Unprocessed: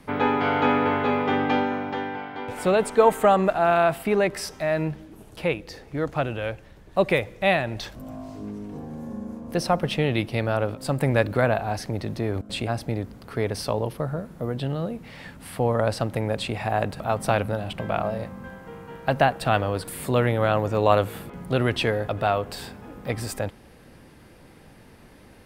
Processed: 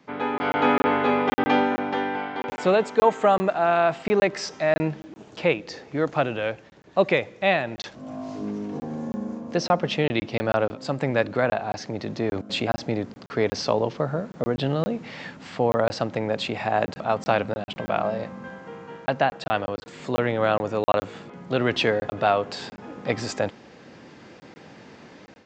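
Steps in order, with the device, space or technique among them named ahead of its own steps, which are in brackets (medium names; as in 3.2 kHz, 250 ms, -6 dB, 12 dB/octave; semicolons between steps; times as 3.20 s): call with lost packets (high-pass 170 Hz 12 dB/octave; resampled via 16 kHz; level rider; lost packets of 20 ms random); trim -5.5 dB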